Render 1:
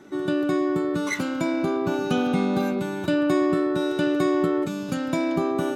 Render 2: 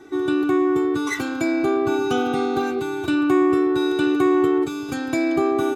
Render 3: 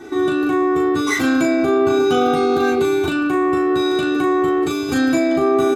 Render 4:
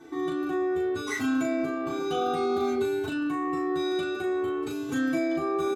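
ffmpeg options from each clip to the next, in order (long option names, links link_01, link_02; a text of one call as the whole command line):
ffmpeg -i in.wav -af "aecho=1:1:2.6:0.96" out.wav
ffmpeg -i in.wav -filter_complex "[0:a]alimiter=limit=-19dB:level=0:latency=1:release=16,asplit=2[link_01][link_02];[link_02]aecho=0:1:12|38:0.596|0.631[link_03];[link_01][link_03]amix=inputs=2:normalize=0,volume=7dB" out.wav
ffmpeg -i in.wav -filter_complex "[0:a]asplit=2[link_01][link_02];[link_02]adelay=4,afreqshift=0.59[link_03];[link_01][link_03]amix=inputs=2:normalize=1,volume=-8.5dB" out.wav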